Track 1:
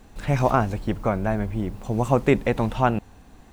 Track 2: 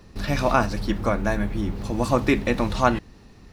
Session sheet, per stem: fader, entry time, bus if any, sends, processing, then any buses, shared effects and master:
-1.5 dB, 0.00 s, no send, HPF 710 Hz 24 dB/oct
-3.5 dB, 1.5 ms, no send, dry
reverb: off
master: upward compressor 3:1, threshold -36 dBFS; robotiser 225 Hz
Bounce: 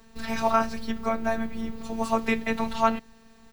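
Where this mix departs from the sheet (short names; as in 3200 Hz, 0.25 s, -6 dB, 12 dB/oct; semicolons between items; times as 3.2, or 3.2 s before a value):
stem 2: polarity flipped; master: missing upward compressor 3:1, threshold -36 dBFS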